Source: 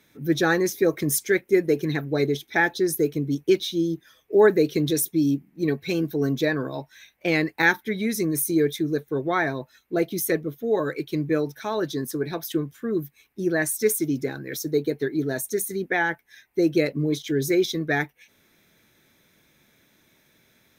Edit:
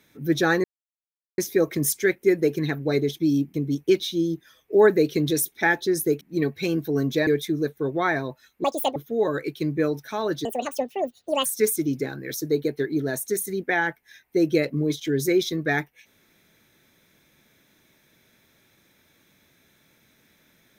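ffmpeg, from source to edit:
-filter_complex "[0:a]asplit=11[s0][s1][s2][s3][s4][s5][s6][s7][s8][s9][s10];[s0]atrim=end=0.64,asetpts=PTS-STARTPTS,afade=t=out:st=0.636:d=0.004:c=hsin,apad=pad_dur=0.74[s11];[s1]atrim=start=0.64:end=2.452,asetpts=PTS-STARTPTS,afade=t=in:d=0.004:c=hsin[s12];[s2]atrim=start=5.118:end=5.472[s13];[s3]atrim=start=3.138:end=5.122[s14];[s4]atrim=start=2.448:end=3.142[s15];[s5]atrim=start=5.468:end=6.532[s16];[s6]atrim=start=8.578:end=9.954[s17];[s7]atrim=start=9.95:end=10.48,asetpts=PTS-STARTPTS,asetrate=73206,aresample=44100,atrim=end_sample=14080,asetpts=PTS-STARTPTS[s18];[s8]atrim=start=10.476:end=11.974[s19];[s9]atrim=start=11.97:end=13.68,asetpts=PTS-STARTPTS,asetrate=74970,aresample=44100,atrim=end_sample=44359,asetpts=PTS-STARTPTS[s20];[s10]atrim=start=13.676[s21];[s11][s12]concat=n=2:v=0:a=1[s22];[s22][s13]acrossfade=d=0.004:c1=hsin:c2=hsin[s23];[s23][s14]acrossfade=d=0.004:c1=hsin:c2=hsin[s24];[s24][s15]acrossfade=d=0.004:c1=hsin:c2=hsin[s25];[s25][s16]acrossfade=d=0.004:c1=hsin:c2=hsin[s26];[s26][s17]acrossfade=d=0.004:c1=hsin:c2=hsin[s27];[s27][s18]acrossfade=d=0.004:c1=hsin:c2=hsin[s28];[s28][s19]acrossfade=d=0.004:c1=hsin:c2=hsin[s29];[s29][s20]acrossfade=d=0.004:c1=hsin:c2=hsin[s30];[s30][s21]acrossfade=d=0.004:c1=hsin:c2=hsin"

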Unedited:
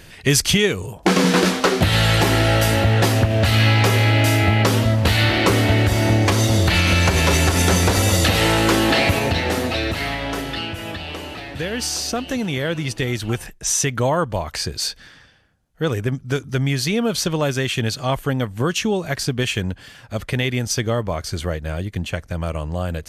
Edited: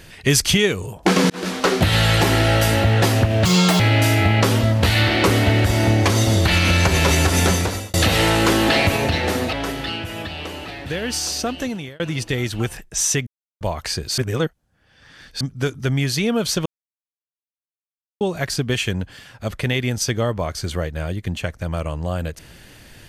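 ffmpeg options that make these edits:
-filter_complex "[0:a]asplit=13[s0][s1][s2][s3][s4][s5][s6][s7][s8][s9][s10][s11][s12];[s0]atrim=end=1.3,asetpts=PTS-STARTPTS,afade=t=out:st=1.296:d=0.004:c=hsin[s13];[s1]atrim=start=1.3:end=3.454,asetpts=PTS-STARTPTS,afade=t=in:d=0.4[s14];[s2]atrim=start=3.45:end=4.02,asetpts=PTS-STARTPTS,asetrate=72324,aresample=44100,atrim=end_sample=15327,asetpts=PTS-STARTPTS[s15];[s3]atrim=start=4.016:end=8.16,asetpts=PTS-STARTPTS,afade=t=out:st=3.654:d=0.49[s16];[s4]atrim=start=8.16:end=9.752,asetpts=PTS-STARTPTS,afade=t=in:d=0.004:c=hsin[s17];[s5]atrim=start=10.218:end=12.69,asetpts=PTS-STARTPTS,afade=t=out:st=2.062:d=0.41[s18];[s6]atrim=start=12.69:end=13.96,asetpts=PTS-STARTPTS,afade=t=in:d=0.004:c=hsin,afade=t=out:st=1.266:d=0.004:c=hsin[s19];[s7]atrim=start=13.96:end=14.3,asetpts=PTS-STARTPTS,volume=0[s20];[s8]atrim=start=14.3:end=14.872,asetpts=PTS-STARTPTS,afade=t=in:d=0.004:c=hsin[s21];[s9]atrim=start=14.868:end=16.102,asetpts=PTS-STARTPTS,areverse[s22];[s10]atrim=start=16.098:end=17.35,asetpts=PTS-STARTPTS,afade=t=out:st=1.248:d=0.004:c=hsin[s23];[s11]atrim=start=17.35:end=18.9,asetpts=PTS-STARTPTS,volume=0[s24];[s12]atrim=start=18.9,asetpts=PTS-STARTPTS,afade=t=in:d=0.004:c=hsin[s25];[s13][s14]concat=n=2:v=0:a=1[s26];[s26][s15]acrossfade=d=0.004:c1=hsin:c2=hsin[s27];[s16][s17]concat=n=2:v=0:a=1[s28];[s27][s28]acrossfade=d=0.004:c1=hsin:c2=hsin[s29];[s18][s19][s20][s21]concat=n=4:v=0:a=1[s30];[s29][s30]acrossfade=d=0.004:c1=hsin:c2=hsin[s31];[s31][s22]acrossfade=d=0.004:c1=hsin:c2=hsin[s32];[s23][s24][s25]concat=n=3:v=0:a=1[s33];[s32][s33]acrossfade=d=0.004:c1=hsin:c2=hsin"

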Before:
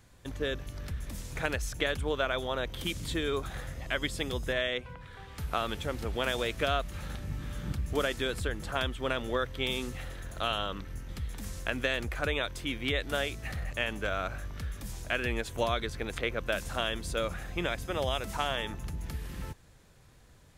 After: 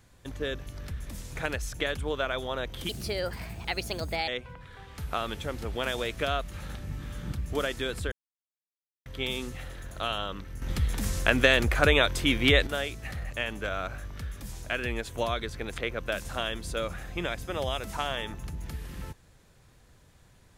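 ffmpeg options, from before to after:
-filter_complex "[0:a]asplit=7[s0][s1][s2][s3][s4][s5][s6];[s0]atrim=end=2.894[s7];[s1]atrim=start=2.89:end=4.68,asetpts=PTS-STARTPTS,asetrate=56889,aresample=44100,atrim=end_sample=61193,asetpts=PTS-STARTPTS[s8];[s2]atrim=start=4.676:end=8.52,asetpts=PTS-STARTPTS,afade=t=out:st=3.84:d=0.004:c=hsin[s9];[s3]atrim=start=8.52:end=9.46,asetpts=PTS-STARTPTS,volume=0[s10];[s4]atrim=start=9.46:end=11.022,asetpts=PTS-STARTPTS,afade=t=in:d=0.004:c=hsin[s11];[s5]atrim=start=11.018:end=13.072,asetpts=PTS-STARTPTS,volume=2.99[s12];[s6]atrim=start=13.068[s13];[s7][s8]acrossfade=d=0.004:c1=hsin:c2=hsin[s14];[s9][s10][s11]concat=n=3:v=0:a=1[s15];[s14][s15]acrossfade=d=0.004:c1=hsin:c2=hsin[s16];[s16][s12]acrossfade=d=0.004:c1=hsin:c2=hsin[s17];[s17][s13]acrossfade=d=0.004:c1=hsin:c2=hsin"

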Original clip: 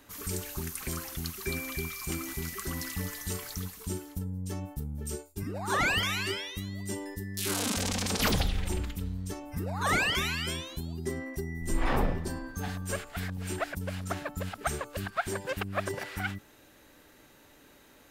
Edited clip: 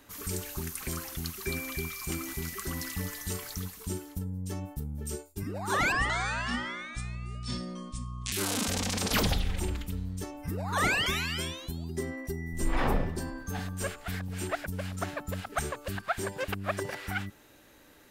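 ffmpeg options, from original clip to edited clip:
-filter_complex "[0:a]asplit=3[s0][s1][s2];[s0]atrim=end=5.924[s3];[s1]atrim=start=5.92:end=7.41,asetpts=PTS-STARTPTS,asetrate=27342,aresample=44100,atrim=end_sample=105982,asetpts=PTS-STARTPTS[s4];[s2]atrim=start=7.406[s5];[s3][s4]acrossfade=d=0.004:c1=hsin:c2=hsin[s6];[s6][s5]acrossfade=d=0.004:c1=hsin:c2=hsin"

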